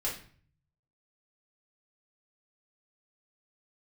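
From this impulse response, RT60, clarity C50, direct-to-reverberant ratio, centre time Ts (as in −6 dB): 0.45 s, 7.0 dB, −6.0 dB, 28 ms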